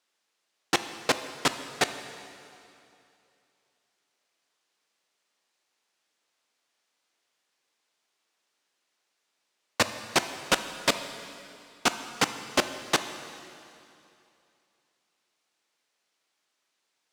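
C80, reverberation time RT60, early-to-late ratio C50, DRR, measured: 11.0 dB, 2.7 s, 10.0 dB, 9.0 dB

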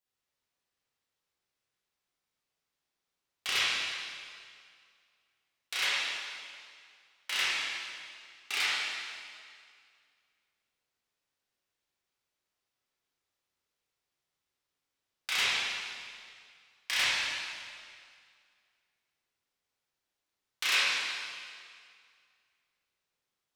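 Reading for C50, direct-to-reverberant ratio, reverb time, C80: -4.5 dB, -10.0 dB, 2.1 s, -2.0 dB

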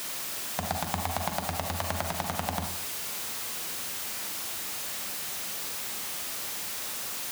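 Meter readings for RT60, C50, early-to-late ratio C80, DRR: 0.55 s, 5.5 dB, 10.0 dB, 4.0 dB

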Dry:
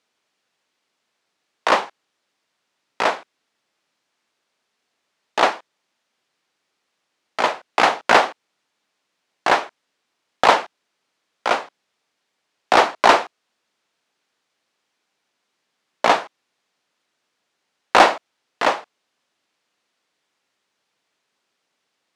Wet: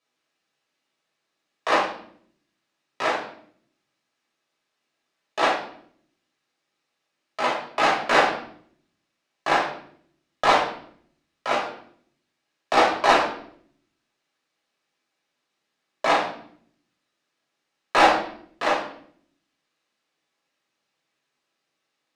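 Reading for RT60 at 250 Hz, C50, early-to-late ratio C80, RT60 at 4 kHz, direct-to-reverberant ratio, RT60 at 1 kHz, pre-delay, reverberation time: 0.95 s, 5.0 dB, 9.5 dB, 0.55 s, -5.0 dB, 0.55 s, 5 ms, 0.60 s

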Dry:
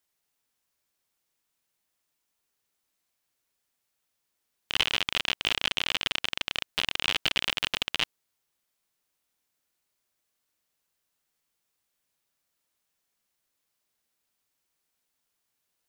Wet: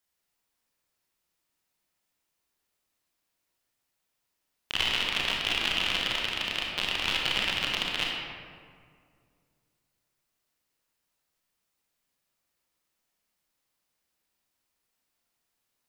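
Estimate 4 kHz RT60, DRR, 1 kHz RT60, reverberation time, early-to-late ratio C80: 1.1 s, -2.0 dB, 1.9 s, 2.1 s, 2.0 dB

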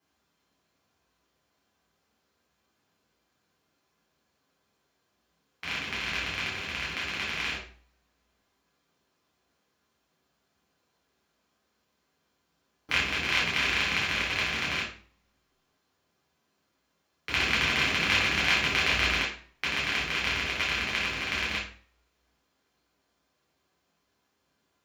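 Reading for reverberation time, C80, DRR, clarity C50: 0.45 s, 9.5 dB, -7.0 dB, 4.0 dB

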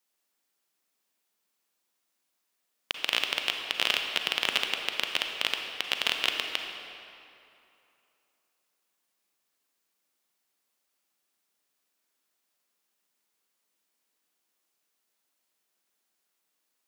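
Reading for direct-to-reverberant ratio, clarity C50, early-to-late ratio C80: 3.5 dB, 4.0 dB, 5.0 dB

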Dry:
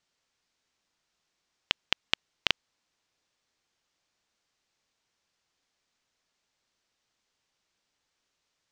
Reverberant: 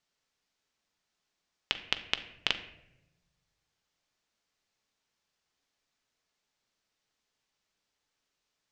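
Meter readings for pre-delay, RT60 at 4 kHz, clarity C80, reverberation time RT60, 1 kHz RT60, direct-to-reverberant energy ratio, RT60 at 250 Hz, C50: 5 ms, 0.55 s, 14.5 dB, 0.95 s, 0.75 s, 8.0 dB, 1.5 s, 12.0 dB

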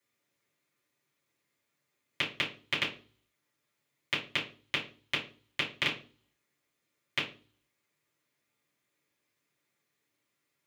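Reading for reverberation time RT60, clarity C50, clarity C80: 0.40 s, 10.0 dB, 15.5 dB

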